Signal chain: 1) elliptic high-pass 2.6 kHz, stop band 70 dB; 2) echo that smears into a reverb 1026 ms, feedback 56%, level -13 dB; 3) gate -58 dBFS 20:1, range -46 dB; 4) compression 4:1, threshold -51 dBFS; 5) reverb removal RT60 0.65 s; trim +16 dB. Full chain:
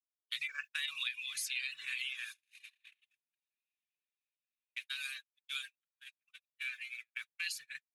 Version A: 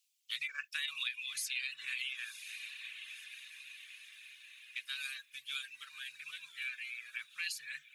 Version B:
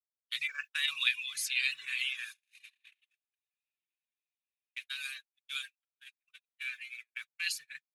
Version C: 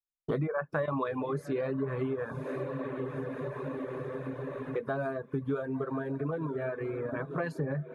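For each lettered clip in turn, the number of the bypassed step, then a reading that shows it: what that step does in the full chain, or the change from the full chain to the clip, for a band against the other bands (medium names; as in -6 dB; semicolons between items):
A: 3, momentary loudness spread change -6 LU; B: 4, mean gain reduction 2.5 dB; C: 1, crest factor change -8.0 dB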